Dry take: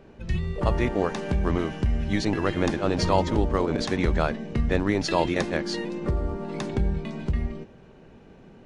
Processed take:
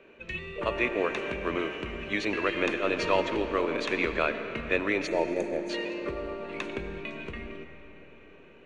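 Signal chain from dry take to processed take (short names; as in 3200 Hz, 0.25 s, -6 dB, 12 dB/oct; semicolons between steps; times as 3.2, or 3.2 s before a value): thirty-one-band EQ 800 Hz -11 dB, 2500 Hz +11 dB, 5000 Hz -11 dB; spectral gain 5.07–5.7, 930–5900 Hz -20 dB; three-band isolator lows -19 dB, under 320 Hz, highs -12 dB, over 5500 Hz; on a send: reverb RT60 3.8 s, pre-delay 55 ms, DRR 9 dB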